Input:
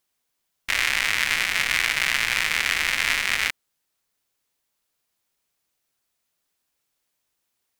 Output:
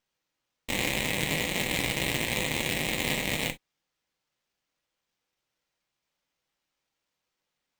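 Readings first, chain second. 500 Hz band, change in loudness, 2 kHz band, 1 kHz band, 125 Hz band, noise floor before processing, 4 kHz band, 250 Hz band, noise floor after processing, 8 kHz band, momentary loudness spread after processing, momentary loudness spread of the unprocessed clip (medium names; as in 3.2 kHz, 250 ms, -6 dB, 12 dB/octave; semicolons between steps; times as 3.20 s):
+8.0 dB, -6.5 dB, -9.5 dB, -5.5 dB, +10.0 dB, -77 dBFS, -6.0 dB, +12.0 dB, -85 dBFS, -4.0 dB, 5 LU, 3 LU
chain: comb filter that takes the minimum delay 0.33 ms; sample-rate reducer 11 kHz, jitter 20%; gated-style reverb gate 80 ms falling, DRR 5.5 dB; trim -6.5 dB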